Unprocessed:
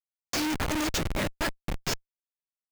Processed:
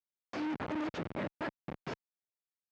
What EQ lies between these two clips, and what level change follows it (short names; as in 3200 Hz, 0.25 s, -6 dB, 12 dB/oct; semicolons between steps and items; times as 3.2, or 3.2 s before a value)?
HPF 160 Hz 12 dB/oct; tape spacing loss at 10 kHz 26 dB; high shelf 5200 Hz -12 dB; -4.5 dB